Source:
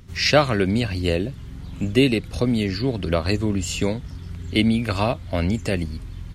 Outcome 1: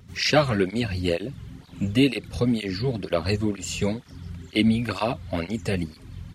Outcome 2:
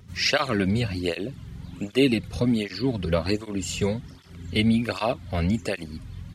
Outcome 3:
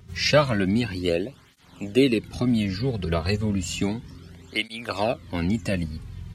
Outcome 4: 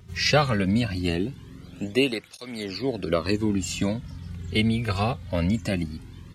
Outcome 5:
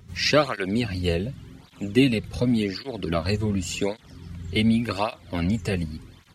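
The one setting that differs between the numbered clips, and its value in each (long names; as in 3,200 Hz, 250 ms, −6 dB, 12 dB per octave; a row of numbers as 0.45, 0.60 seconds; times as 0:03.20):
through-zero flanger with one copy inverted, nulls at: 2.1, 1.3, 0.32, 0.21, 0.88 Hertz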